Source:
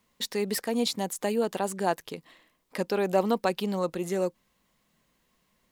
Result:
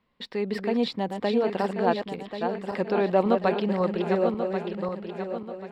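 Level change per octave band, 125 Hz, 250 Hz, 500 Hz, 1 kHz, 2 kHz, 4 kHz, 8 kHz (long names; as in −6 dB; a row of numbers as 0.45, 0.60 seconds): +4.5 dB, +4.5 dB, +4.0 dB, +3.5 dB, +2.5 dB, −2.5 dB, below −15 dB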